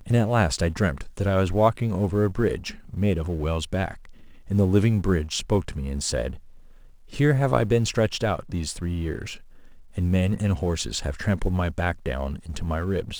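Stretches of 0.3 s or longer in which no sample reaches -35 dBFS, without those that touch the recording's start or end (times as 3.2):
4.05–4.49
6.38–7.12
9.36–9.96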